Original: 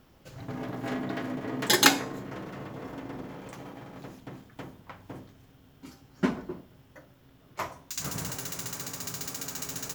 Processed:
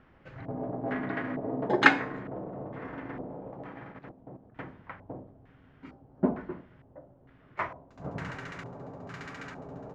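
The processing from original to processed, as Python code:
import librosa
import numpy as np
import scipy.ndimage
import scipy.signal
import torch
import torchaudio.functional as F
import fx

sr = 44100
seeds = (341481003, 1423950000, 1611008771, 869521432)

y = fx.filter_lfo_lowpass(x, sr, shape='square', hz=1.1, low_hz=680.0, high_hz=1900.0, q=2.0)
y = fx.level_steps(y, sr, step_db=11, at=(3.92, 4.54), fade=0.02)
y = y * librosa.db_to_amplitude(-1.0)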